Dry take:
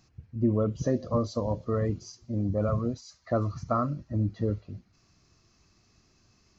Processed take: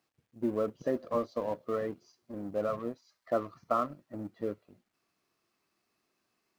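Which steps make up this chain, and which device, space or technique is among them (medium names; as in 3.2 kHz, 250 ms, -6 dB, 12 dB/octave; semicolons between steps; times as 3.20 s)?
phone line with mismatched companding (band-pass 330–3200 Hz; companding laws mixed up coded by A)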